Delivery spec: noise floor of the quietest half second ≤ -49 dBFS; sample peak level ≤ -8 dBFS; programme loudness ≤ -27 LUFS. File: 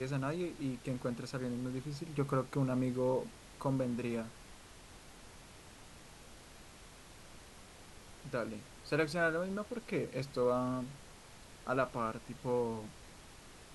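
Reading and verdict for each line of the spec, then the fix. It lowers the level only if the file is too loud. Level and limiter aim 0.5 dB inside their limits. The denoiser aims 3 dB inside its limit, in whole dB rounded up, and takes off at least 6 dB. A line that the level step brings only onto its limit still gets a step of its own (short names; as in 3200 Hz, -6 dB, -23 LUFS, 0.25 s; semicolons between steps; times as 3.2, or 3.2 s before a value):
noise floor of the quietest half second -55 dBFS: OK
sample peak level -18.5 dBFS: OK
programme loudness -37.0 LUFS: OK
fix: none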